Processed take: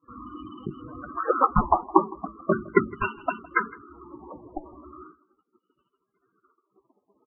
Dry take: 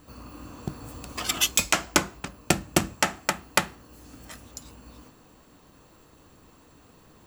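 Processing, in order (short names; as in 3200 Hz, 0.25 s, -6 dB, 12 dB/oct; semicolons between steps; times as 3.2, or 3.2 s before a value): gliding pitch shift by +5 st starting unshifted; HPF 72 Hz 6 dB/oct; gate -53 dBFS, range -28 dB; EQ curve 130 Hz 0 dB, 380 Hz +8 dB, 780 Hz -3 dB, 1200 Hz +12 dB, 2800 Hz -15 dB, 4700 Hz -22 dB, 6900 Hz +12 dB, 16000 Hz +6 dB; sample-rate reducer 4200 Hz, jitter 0%; LFO low-pass sine 0.39 Hz 870–2700 Hz; loudest bins only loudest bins 16; air absorption 200 m; on a send: echo 0.161 s -22.5 dB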